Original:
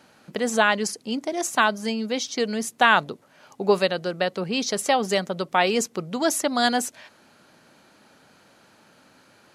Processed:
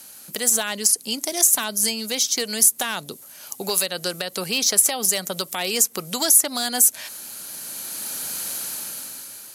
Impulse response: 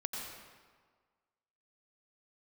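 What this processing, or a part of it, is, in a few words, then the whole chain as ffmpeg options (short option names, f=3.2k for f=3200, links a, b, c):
FM broadcast chain: -filter_complex "[0:a]highpass=f=53:w=0.5412,highpass=f=53:w=1.3066,dynaudnorm=f=250:g=9:m=16dB,acrossover=split=550|2400[a][b][c];[a]acompressor=threshold=-28dB:ratio=4[d];[b]acompressor=threshold=-27dB:ratio=4[e];[c]acompressor=threshold=-35dB:ratio=4[f];[d][e][f]amix=inputs=3:normalize=0,aemphasis=mode=production:type=75fm,alimiter=limit=-14.5dB:level=0:latency=1:release=143,asoftclip=type=hard:threshold=-17.5dB,lowpass=f=15k:w=0.5412,lowpass=f=15k:w=1.3066,aemphasis=mode=production:type=75fm,volume=-1dB"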